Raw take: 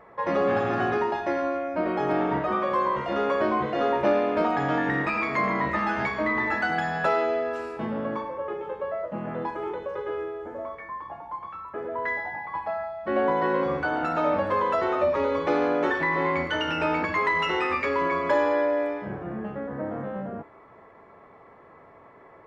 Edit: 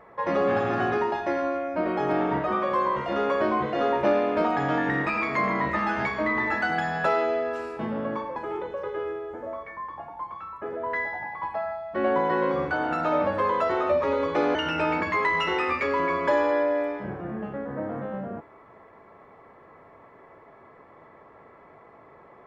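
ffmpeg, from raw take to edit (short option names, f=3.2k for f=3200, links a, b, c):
-filter_complex "[0:a]asplit=3[a][b][c];[a]atrim=end=8.362[d];[b]atrim=start=9.478:end=15.672[e];[c]atrim=start=16.568[f];[d][e]acrossfade=d=0.004:c1=hsin:c2=hsin[g];[g][f]acrossfade=d=0.004:c1=hsin:c2=hsin"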